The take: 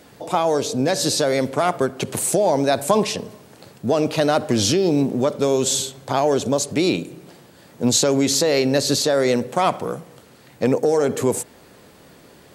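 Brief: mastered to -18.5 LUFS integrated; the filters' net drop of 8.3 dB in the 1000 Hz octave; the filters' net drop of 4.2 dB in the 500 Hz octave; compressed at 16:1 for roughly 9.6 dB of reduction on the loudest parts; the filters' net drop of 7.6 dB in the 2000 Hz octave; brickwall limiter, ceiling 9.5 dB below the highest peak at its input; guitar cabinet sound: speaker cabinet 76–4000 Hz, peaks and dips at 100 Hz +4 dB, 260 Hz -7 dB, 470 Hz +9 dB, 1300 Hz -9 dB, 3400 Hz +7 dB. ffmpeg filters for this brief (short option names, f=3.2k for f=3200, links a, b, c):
-af "equalizer=f=500:t=o:g=-9,equalizer=f=1k:t=o:g=-5,equalizer=f=2k:t=o:g=-7,acompressor=threshold=-26dB:ratio=16,alimiter=limit=-23.5dB:level=0:latency=1,highpass=76,equalizer=f=100:t=q:w=4:g=4,equalizer=f=260:t=q:w=4:g=-7,equalizer=f=470:t=q:w=4:g=9,equalizer=f=1.3k:t=q:w=4:g=-9,equalizer=f=3.4k:t=q:w=4:g=7,lowpass=f=4k:w=0.5412,lowpass=f=4k:w=1.3066,volume=15.5dB"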